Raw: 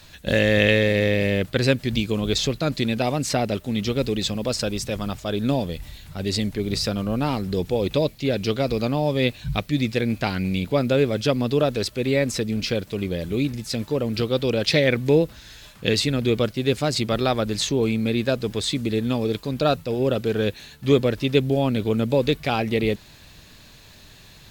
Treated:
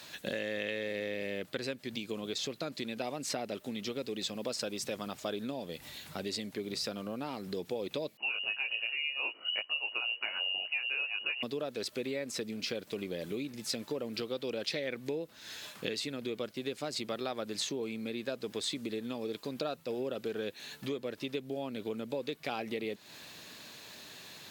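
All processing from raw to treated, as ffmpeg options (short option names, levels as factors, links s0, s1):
-filter_complex "[0:a]asettb=1/sr,asplit=3[s0][s1][s2];[s0]atrim=end=8.174[s3];[s1]atrim=start=8.17:end=11.43,asetpts=PTS-STARTPTS,afade=t=in:d=0.004:c=qsin,afade=t=out:st=3.256:d=0.004:c=qsin,flanger=delay=17:depth=3.6:speed=1.5,lowpass=f=2600:t=q:w=0.5098,lowpass=f=2600:t=q:w=0.6013,lowpass=f=2600:t=q:w=0.9,lowpass=f=2600:t=q:w=2.563,afreqshift=-3000[s4];[s2]atrim=start=11.426[s5];[s3][s4]acrossfade=d=0.004:c1=hsin:c2=qsin[s6];[s6][s5]acrossfade=d=0.004:c1=qsin:c2=hsin,acompressor=threshold=0.0282:ratio=16,highpass=250"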